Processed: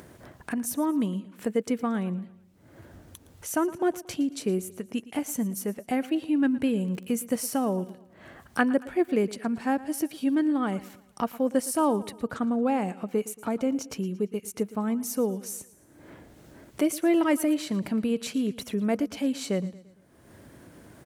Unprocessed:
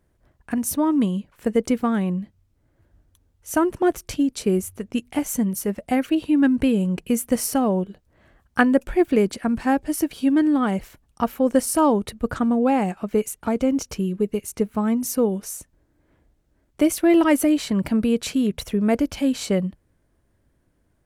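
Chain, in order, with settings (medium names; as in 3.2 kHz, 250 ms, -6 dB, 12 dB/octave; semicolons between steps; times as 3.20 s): high-pass 130 Hz 12 dB/octave; upward compressor, threshold -23 dBFS; 6.82–7.89 s: crackle 52 per s -> 20 per s -31 dBFS; feedback delay 114 ms, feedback 45%, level -18 dB; trim -6 dB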